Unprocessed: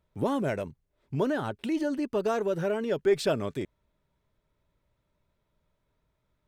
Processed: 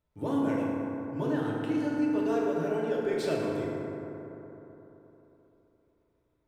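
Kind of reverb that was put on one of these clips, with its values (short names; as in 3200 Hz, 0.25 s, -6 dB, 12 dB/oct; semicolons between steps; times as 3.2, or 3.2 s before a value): FDN reverb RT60 3.6 s, high-frequency decay 0.35×, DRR -5.5 dB; gain -9 dB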